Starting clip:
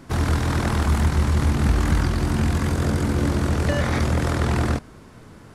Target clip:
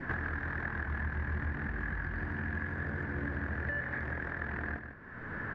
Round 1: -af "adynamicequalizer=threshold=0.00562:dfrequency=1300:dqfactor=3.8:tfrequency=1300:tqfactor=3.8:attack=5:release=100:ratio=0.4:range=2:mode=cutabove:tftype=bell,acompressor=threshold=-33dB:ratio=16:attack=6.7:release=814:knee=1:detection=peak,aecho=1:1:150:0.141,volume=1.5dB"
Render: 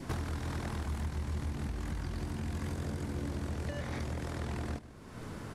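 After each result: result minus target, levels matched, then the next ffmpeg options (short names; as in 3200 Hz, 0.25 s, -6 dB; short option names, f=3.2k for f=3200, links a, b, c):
2000 Hz band -11.5 dB; echo-to-direct -9 dB
-af "adynamicequalizer=threshold=0.00562:dfrequency=1300:dqfactor=3.8:tfrequency=1300:tqfactor=3.8:attack=5:release=100:ratio=0.4:range=2:mode=cutabove:tftype=bell,lowpass=f=1.7k:t=q:w=11,acompressor=threshold=-33dB:ratio=16:attack=6.7:release=814:knee=1:detection=peak,aecho=1:1:150:0.141,volume=1.5dB"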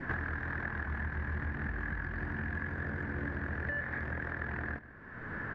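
echo-to-direct -9 dB
-af "adynamicequalizer=threshold=0.00562:dfrequency=1300:dqfactor=3.8:tfrequency=1300:tqfactor=3.8:attack=5:release=100:ratio=0.4:range=2:mode=cutabove:tftype=bell,lowpass=f=1.7k:t=q:w=11,acompressor=threshold=-33dB:ratio=16:attack=6.7:release=814:knee=1:detection=peak,aecho=1:1:150:0.398,volume=1.5dB"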